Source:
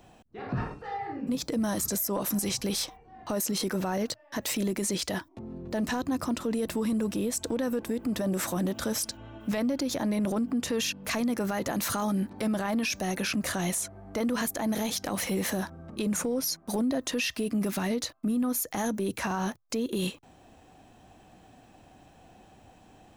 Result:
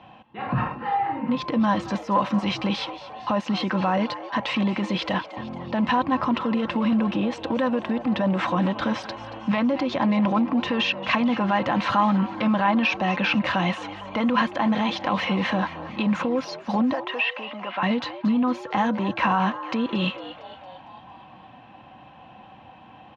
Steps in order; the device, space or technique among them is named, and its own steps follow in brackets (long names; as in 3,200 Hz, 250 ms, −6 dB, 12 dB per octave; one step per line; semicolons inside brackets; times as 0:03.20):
0:16.93–0:17.83: three-way crossover with the lows and the highs turned down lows −23 dB, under 440 Hz, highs −23 dB, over 3,100 Hz
frequency-shifting delay pedal into a guitar cabinet (echo with shifted repeats 228 ms, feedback 59%, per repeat +120 Hz, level −15 dB; loudspeaker in its box 110–3,400 Hz, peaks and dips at 130 Hz +7 dB, 270 Hz −6 dB, 430 Hz −9 dB, 1,000 Hz +9 dB, 2,800 Hz +5 dB)
comb filter 3.8 ms, depth 38%
level +7 dB